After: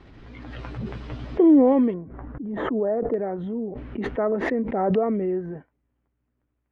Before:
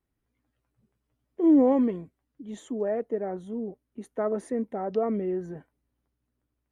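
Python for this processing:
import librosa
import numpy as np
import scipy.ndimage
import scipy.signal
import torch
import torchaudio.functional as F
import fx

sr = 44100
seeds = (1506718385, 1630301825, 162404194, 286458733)

y = fx.lowpass(x, sr, hz=fx.steps((0.0, 4300.0), (1.94, 1500.0), (3.14, 2700.0)), slope=24)
y = fx.pre_swell(y, sr, db_per_s=25.0)
y = y * librosa.db_to_amplitude(3.5)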